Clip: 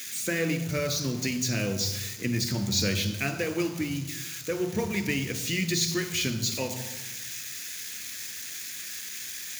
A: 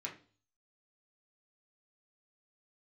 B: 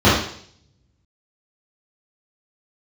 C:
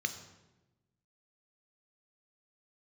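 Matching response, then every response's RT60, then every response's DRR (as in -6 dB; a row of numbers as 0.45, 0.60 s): C; 0.40, 0.60, 1.1 s; -2.0, -11.0, 7.5 dB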